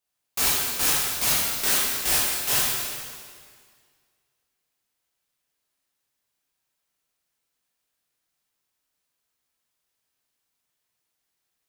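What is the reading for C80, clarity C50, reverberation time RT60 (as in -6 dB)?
0.0 dB, -2.0 dB, 1.9 s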